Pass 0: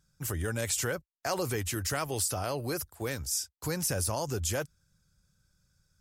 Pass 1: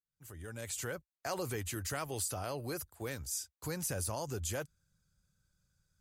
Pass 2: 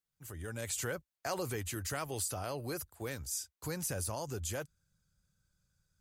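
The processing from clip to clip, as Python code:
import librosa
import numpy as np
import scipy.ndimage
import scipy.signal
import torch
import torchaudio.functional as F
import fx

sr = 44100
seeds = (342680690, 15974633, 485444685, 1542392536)

y1 = fx.fade_in_head(x, sr, length_s=1.07)
y1 = fx.notch(y1, sr, hz=5400.0, q=11.0)
y1 = F.gain(torch.from_numpy(y1), -6.0).numpy()
y2 = fx.rider(y1, sr, range_db=5, speed_s=2.0)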